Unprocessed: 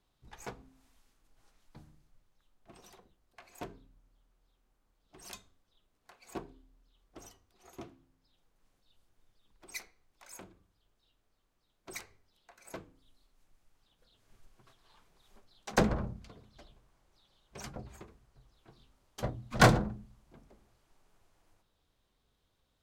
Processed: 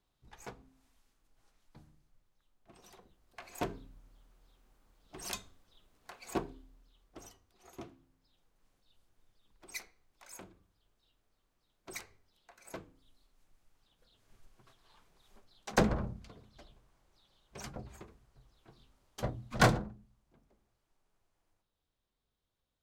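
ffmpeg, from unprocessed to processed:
-af "volume=7.5dB,afade=t=in:st=2.78:d=0.88:silence=0.281838,afade=t=out:st=6.19:d=1.03:silence=0.398107,afade=t=out:st=19.41:d=0.53:silence=0.334965"

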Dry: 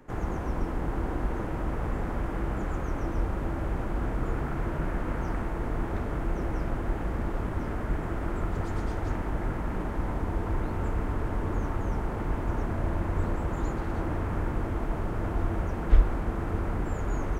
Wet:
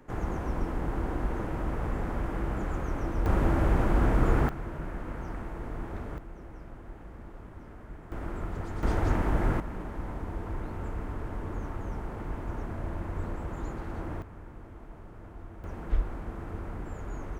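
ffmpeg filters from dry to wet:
-af "asetnsamples=n=441:p=0,asendcmd='3.26 volume volume 6dB;4.49 volume volume -6.5dB;6.18 volume volume -15dB;8.12 volume volume -5dB;8.83 volume volume 4dB;9.6 volume volume -6dB;14.22 volume volume -16.5dB;15.64 volume volume -8dB',volume=-1dB"

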